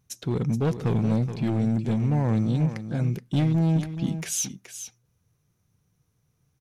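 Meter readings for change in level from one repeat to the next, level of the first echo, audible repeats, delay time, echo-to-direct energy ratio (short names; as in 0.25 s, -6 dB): no steady repeat, -10.5 dB, 1, 0.424 s, -10.5 dB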